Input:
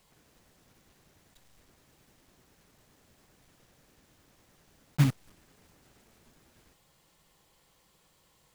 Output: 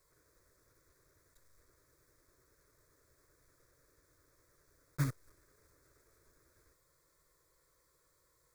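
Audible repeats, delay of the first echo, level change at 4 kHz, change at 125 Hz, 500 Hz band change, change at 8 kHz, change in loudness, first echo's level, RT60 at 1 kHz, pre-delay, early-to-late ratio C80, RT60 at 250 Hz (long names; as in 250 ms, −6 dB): no echo audible, no echo audible, −12.5 dB, −10.0 dB, −5.5 dB, −5.5 dB, −9.5 dB, no echo audible, no reverb audible, no reverb audible, no reverb audible, no reverb audible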